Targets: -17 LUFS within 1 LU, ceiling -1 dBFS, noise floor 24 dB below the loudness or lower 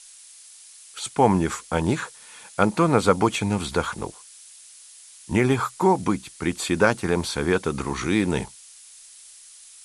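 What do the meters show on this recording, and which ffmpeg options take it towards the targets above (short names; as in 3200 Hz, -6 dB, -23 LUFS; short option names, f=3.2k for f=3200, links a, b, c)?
noise floor -47 dBFS; noise floor target -48 dBFS; loudness -23.5 LUFS; peak -2.5 dBFS; loudness target -17.0 LUFS
-> -af "afftdn=nr=6:nf=-47"
-af "volume=6.5dB,alimiter=limit=-1dB:level=0:latency=1"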